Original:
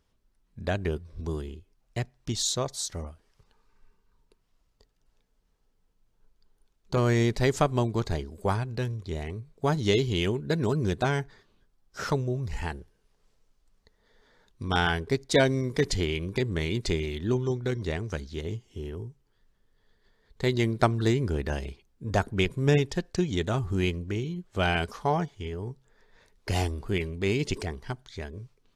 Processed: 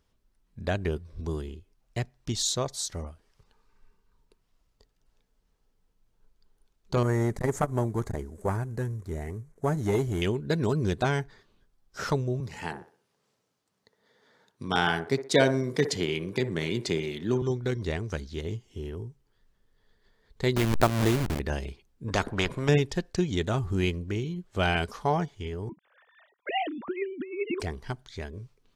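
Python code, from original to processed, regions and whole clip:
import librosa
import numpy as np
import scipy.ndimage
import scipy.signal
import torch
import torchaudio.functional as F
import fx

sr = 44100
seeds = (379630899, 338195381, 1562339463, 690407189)

y = fx.chain(x, sr, fx.cvsd(bps=64000),
    fx.band_shelf(hz=3600.0, db=-12.5, octaves=1.3),
    fx.transformer_sat(knee_hz=410.0), at=(7.03, 10.22))
y = fx.chain(y, sr, fx.highpass(hz=120.0, slope=24),
    fx.echo_wet_bandpass(ms=61, feedback_pct=34, hz=740.0, wet_db=-7.0), at=(12.4, 17.42))
y = fx.chain(y, sr, fx.delta_hold(step_db=-24.5),
    fx.pre_swell(db_per_s=49.0), at=(20.56, 21.4))
y = fx.chain(y, sr, fx.lowpass(hz=1500.0, slope=6),
    fx.spectral_comp(ratio=2.0), at=(22.08, 22.69))
y = fx.chain(y, sr, fx.sine_speech(),
    fx.peak_eq(hz=1400.0, db=3.5, octaves=0.78),
    fx.over_compress(threshold_db=-29.0, ratio=-0.5), at=(25.69, 27.6))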